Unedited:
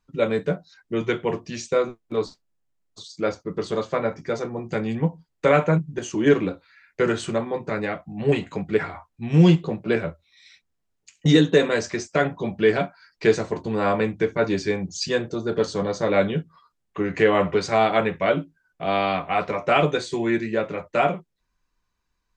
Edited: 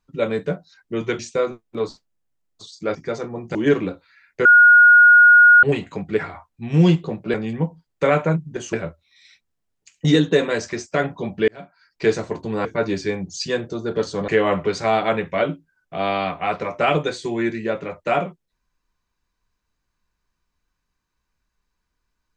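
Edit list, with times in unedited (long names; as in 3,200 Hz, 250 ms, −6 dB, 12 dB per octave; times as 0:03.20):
0:01.19–0:01.56: remove
0:03.32–0:04.16: remove
0:04.76–0:06.15: move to 0:09.94
0:07.05–0:08.23: beep over 1,440 Hz −6.5 dBFS
0:12.69–0:13.30: fade in
0:13.86–0:14.26: remove
0:15.89–0:17.16: remove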